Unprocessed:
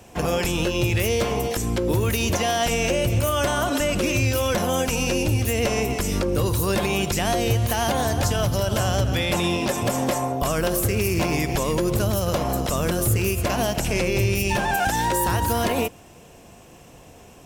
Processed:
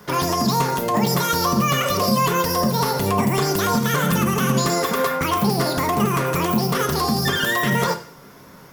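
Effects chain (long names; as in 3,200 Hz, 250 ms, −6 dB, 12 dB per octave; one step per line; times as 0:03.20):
on a send at −5 dB: convolution reverb RT60 1.0 s, pre-delay 3 ms
on the sum: wrong playback speed 7.5 ips tape played at 15 ips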